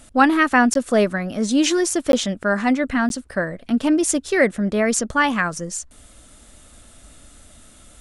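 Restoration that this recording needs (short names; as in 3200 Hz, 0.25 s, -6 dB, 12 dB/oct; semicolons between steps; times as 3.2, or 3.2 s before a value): interpolate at 0.74/2.12/3.09, 12 ms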